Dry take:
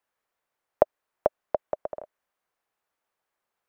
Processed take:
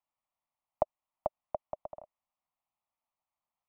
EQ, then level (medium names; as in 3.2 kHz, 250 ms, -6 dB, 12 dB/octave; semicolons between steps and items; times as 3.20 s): treble shelf 2.2 kHz -11.5 dB; static phaser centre 1.6 kHz, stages 6; -4.0 dB